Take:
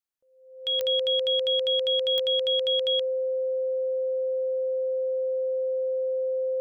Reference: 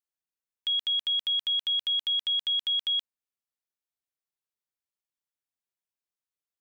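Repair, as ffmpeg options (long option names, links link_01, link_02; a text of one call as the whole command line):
ffmpeg -i in.wav -af "adeclick=threshold=4,bandreject=frequency=520:width=30" out.wav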